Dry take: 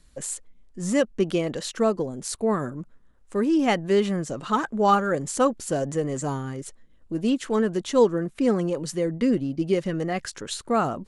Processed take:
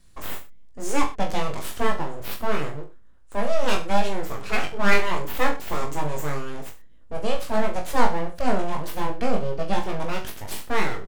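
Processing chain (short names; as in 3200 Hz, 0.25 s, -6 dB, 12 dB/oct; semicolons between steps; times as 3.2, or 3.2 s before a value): full-wave rectifier; reverse bouncing-ball echo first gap 20 ms, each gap 1.1×, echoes 5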